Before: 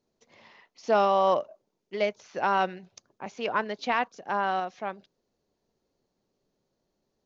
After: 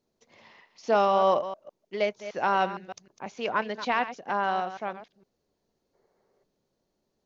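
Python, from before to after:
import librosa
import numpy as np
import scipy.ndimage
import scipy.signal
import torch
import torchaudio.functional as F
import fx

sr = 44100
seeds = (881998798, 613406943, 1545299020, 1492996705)

y = fx.reverse_delay(x, sr, ms=154, wet_db=-12.0)
y = fx.spec_box(y, sr, start_s=5.94, length_s=0.5, low_hz=350.0, high_hz=2300.0, gain_db=10)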